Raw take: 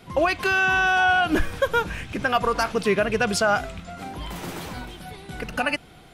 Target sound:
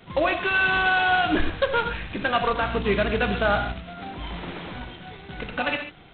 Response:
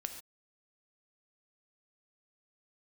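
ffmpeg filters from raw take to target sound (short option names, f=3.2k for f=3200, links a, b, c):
-filter_complex "[0:a]asettb=1/sr,asplit=3[a][b][c];[a]atrim=end=2.604[d];[b]atrim=start=2.6:end=3.73,asetpts=PTS-STARTPTS,afade=t=in:d=0.004:c=qsin,afade=t=out:st=1.126:d=0.004:c=qsin,aeval=exprs='val(0)+0.0282*(sin(2*PI*60*n/s)+sin(2*PI*2*60*n/s)/2+sin(2*PI*3*60*n/s)/3+sin(2*PI*4*60*n/s)/4+sin(2*PI*5*60*n/s)/5)':c=same[e];[c]atrim=start=3.726[f];[d][e]acrossfade=d=0.004:c1=hsin:c2=qsin[g];[g][f]acrossfade=d=0.004:c1=qsin:c2=hsin[h];[1:a]atrim=start_sample=2205[i];[h][i]afir=irnorm=-1:irlink=0" -ar 8000 -c:a adpcm_g726 -b:a 16k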